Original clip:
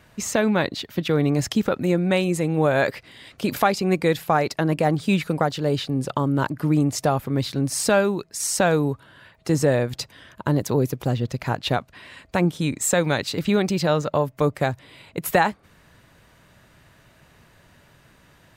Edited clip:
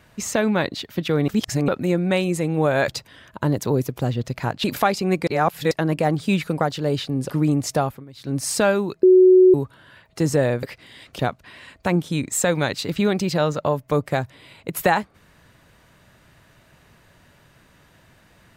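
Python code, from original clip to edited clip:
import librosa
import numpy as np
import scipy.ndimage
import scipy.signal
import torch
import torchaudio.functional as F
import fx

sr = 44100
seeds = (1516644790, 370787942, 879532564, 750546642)

y = fx.edit(x, sr, fx.reverse_span(start_s=1.28, length_s=0.4),
    fx.swap(start_s=2.88, length_s=0.56, other_s=9.92, other_length_s=1.76),
    fx.reverse_span(start_s=4.07, length_s=0.44),
    fx.cut(start_s=6.1, length_s=0.49),
    fx.fade_down_up(start_s=7.1, length_s=0.57, db=-20.5, fade_s=0.24),
    fx.bleep(start_s=8.32, length_s=0.51, hz=370.0, db=-8.0), tone=tone)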